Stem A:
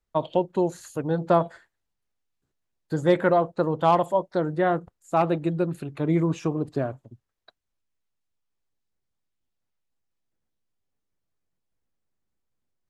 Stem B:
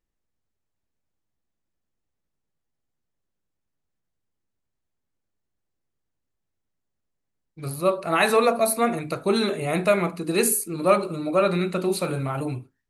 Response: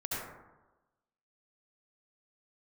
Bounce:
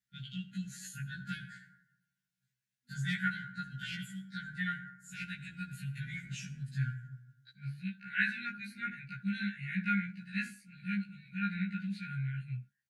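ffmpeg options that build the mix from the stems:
-filter_complex "[0:a]aecho=1:1:7.2:0.87,volume=0.708,asplit=2[s0][s1];[s1]volume=0.2[s2];[1:a]lowpass=1500,lowshelf=f=330:g=-6.5,volume=1.33[s3];[2:a]atrim=start_sample=2205[s4];[s2][s4]afir=irnorm=-1:irlink=0[s5];[s0][s3][s5]amix=inputs=3:normalize=0,afftfilt=real='re*(1-between(b*sr/4096,240,1400))':imag='im*(1-between(b*sr/4096,240,1400))':win_size=4096:overlap=0.75,highpass=150,afftfilt=real='re*1.73*eq(mod(b,3),0)':imag='im*1.73*eq(mod(b,3),0)':win_size=2048:overlap=0.75"

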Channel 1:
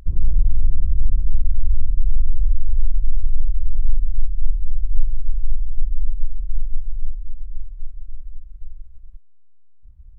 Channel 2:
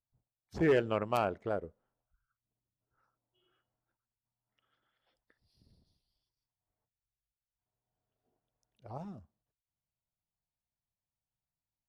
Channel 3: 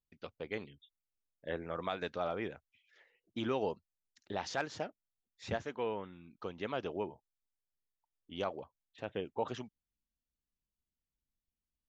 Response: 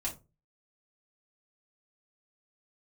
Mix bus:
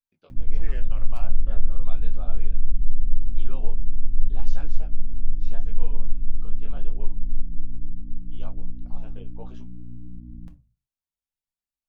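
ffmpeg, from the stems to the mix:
-filter_complex "[0:a]acompressor=threshold=0.0562:ratio=1.5,aeval=exprs='val(0)+0.0251*(sin(2*PI*60*n/s)+sin(2*PI*2*60*n/s)/2+sin(2*PI*3*60*n/s)/3+sin(2*PI*4*60*n/s)/4+sin(2*PI*5*60*n/s)/5)':c=same,adelay=300,volume=0.708,asplit=2[s0][s1];[s1]volume=0.531[s2];[1:a]highpass=f=1000:p=1,volume=1.12,asplit=2[s3][s4];[s4]volume=0.158[s5];[2:a]bandreject=f=1900:w=5.5,flanger=delay=19:depth=4.5:speed=0.84,volume=0.708[s6];[s0][s3]amix=inputs=2:normalize=0,alimiter=limit=0.0794:level=0:latency=1:release=277,volume=1[s7];[3:a]atrim=start_sample=2205[s8];[s2][s5]amix=inputs=2:normalize=0[s9];[s9][s8]afir=irnorm=-1:irlink=0[s10];[s6][s7][s10]amix=inputs=3:normalize=0,flanger=delay=3.5:depth=9.5:regen=61:speed=0.68:shape=triangular"

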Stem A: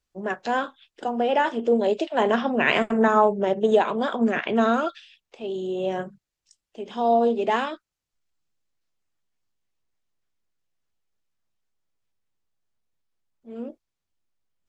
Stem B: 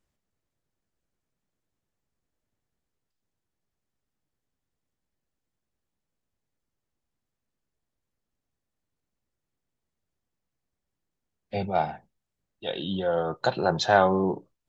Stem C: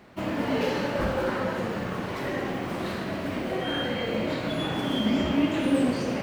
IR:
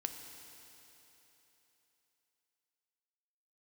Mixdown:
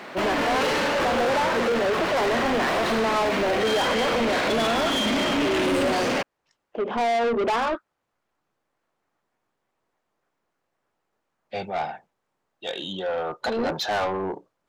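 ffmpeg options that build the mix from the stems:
-filter_complex "[0:a]acompressor=threshold=0.0562:ratio=3,lowpass=1100,volume=0.75[s0];[1:a]volume=0.141[s1];[2:a]highpass=130,volume=0.531[s2];[s0][s1][s2]amix=inputs=3:normalize=0,asplit=2[s3][s4];[s4]highpass=f=720:p=1,volume=28.2,asoftclip=type=tanh:threshold=0.158[s5];[s3][s5]amix=inputs=2:normalize=0,lowpass=f=5600:p=1,volume=0.501"

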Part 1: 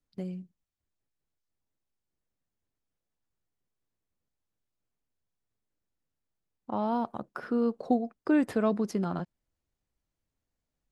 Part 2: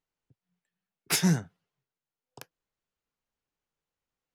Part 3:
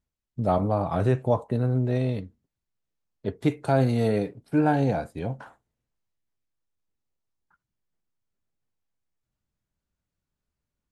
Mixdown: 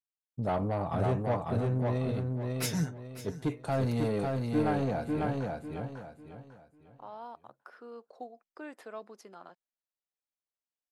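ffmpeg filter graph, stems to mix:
-filter_complex "[0:a]highpass=550,adelay=300,volume=0.266[s0];[1:a]aecho=1:1:6.7:0.84,adelay=1500,volume=0.299,asplit=2[s1][s2];[s2]volume=0.178[s3];[2:a]agate=range=0.0224:threshold=0.00251:ratio=3:detection=peak,asoftclip=type=tanh:threshold=0.112,volume=0.596,asplit=2[s4][s5];[s5]volume=0.708[s6];[s3][s6]amix=inputs=2:normalize=0,aecho=0:1:548|1096|1644|2192:1|0.31|0.0961|0.0298[s7];[s0][s1][s4][s7]amix=inputs=4:normalize=0"

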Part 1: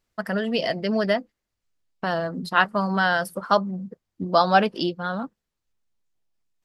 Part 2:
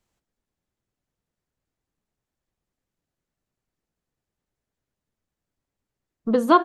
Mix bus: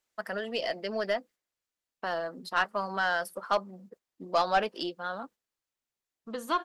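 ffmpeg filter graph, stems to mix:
-filter_complex "[0:a]highpass=370,volume=0.531,asplit=2[s0][s1];[1:a]tiltshelf=f=970:g=-8.5,volume=0.944[s2];[s1]apad=whole_len=292869[s3];[s2][s3]sidechaingate=range=0.282:threshold=0.00251:ratio=16:detection=peak[s4];[s0][s4]amix=inputs=2:normalize=0,aeval=exprs='(tanh(6.31*val(0)+0.15)-tanh(0.15))/6.31':c=same"

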